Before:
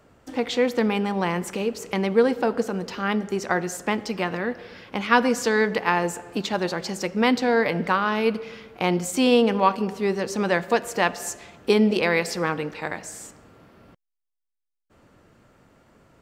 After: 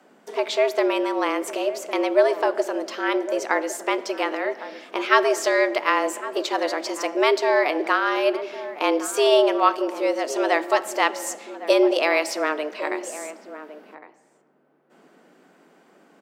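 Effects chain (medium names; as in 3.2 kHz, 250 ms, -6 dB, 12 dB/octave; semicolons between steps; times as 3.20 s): frequency shift +150 Hz; echo from a far wall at 190 m, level -13 dB; trim +1 dB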